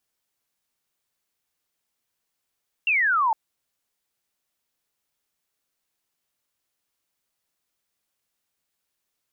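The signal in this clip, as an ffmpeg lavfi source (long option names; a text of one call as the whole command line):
ffmpeg -f lavfi -i "aevalsrc='0.126*clip(t/0.002,0,1)*clip((0.46-t)/0.002,0,1)*sin(2*PI*2800*0.46/log(850/2800)*(exp(log(850/2800)*t/0.46)-1))':duration=0.46:sample_rate=44100" out.wav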